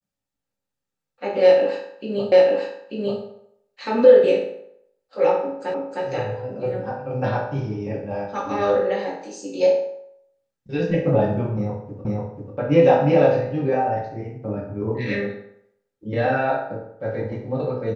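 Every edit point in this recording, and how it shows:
2.32 s: repeat of the last 0.89 s
5.74 s: repeat of the last 0.31 s
12.05 s: repeat of the last 0.49 s

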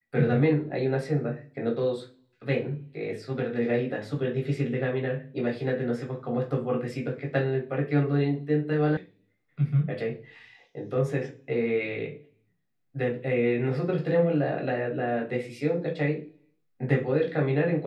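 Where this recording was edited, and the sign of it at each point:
8.97 s: sound stops dead

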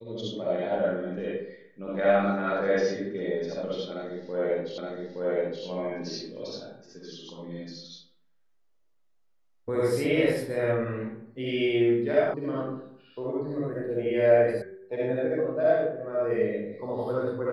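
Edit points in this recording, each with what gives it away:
4.78 s: repeat of the last 0.87 s
12.34 s: sound stops dead
14.62 s: sound stops dead

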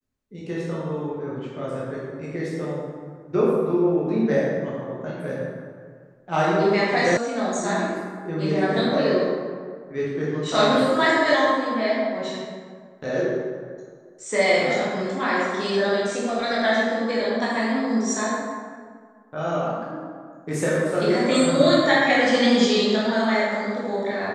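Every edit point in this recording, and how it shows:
7.17 s: sound stops dead

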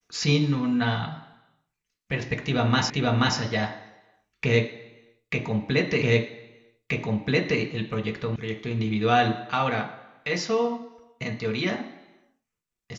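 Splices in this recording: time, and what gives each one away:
2.90 s: repeat of the last 0.48 s
6.02 s: repeat of the last 1.58 s
8.36 s: sound stops dead

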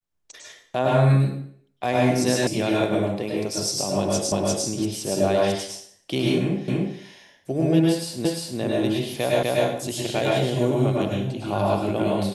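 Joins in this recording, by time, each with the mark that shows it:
2.47 s: sound stops dead
4.32 s: repeat of the last 0.35 s
6.68 s: repeat of the last 0.29 s
8.25 s: repeat of the last 0.35 s
9.43 s: repeat of the last 0.25 s

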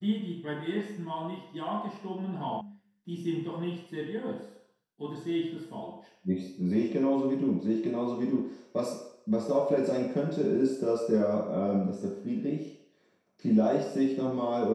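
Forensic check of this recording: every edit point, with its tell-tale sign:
2.61 s: sound stops dead

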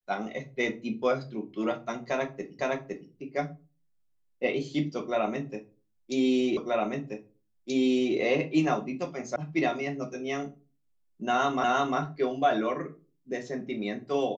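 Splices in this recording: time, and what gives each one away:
2.59 s: repeat of the last 0.51 s
6.57 s: repeat of the last 1.58 s
9.36 s: sound stops dead
11.64 s: repeat of the last 0.35 s

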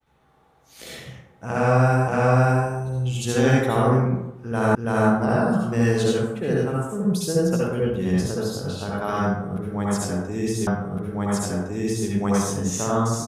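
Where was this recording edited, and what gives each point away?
2.08 s: repeat of the last 0.57 s
4.75 s: repeat of the last 0.33 s
10.67 s: repeat of the last 1.41 s

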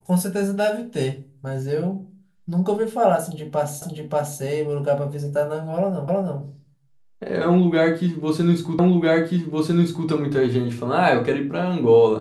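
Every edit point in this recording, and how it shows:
3.82 s: repeat of the last 0.58 s
6.08 s: repeat of the last 0.32 s
8.79 s: repeat of the last 1.3 s

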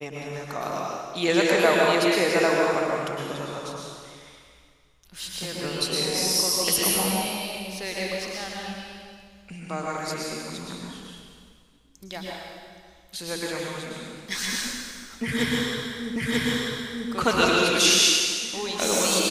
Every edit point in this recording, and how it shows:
16.16 s: repeat of the last 0.94 s

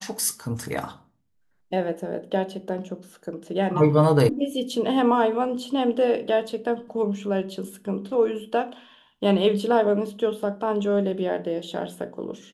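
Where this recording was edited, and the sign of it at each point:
4.29 s: sound stops dead

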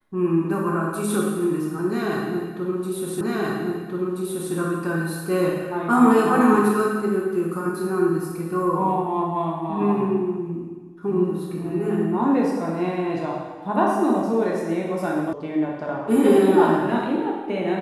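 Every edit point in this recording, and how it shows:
3.21 s: repeat of the last 1.33 s
15.33 s: sound stops dead

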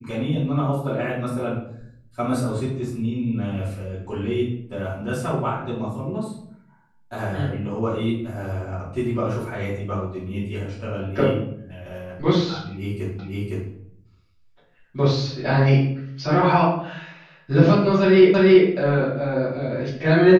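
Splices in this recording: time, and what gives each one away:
13.19 s: repeat of the last 0.51 s
18.34 s: repeat of the last 0.33 s

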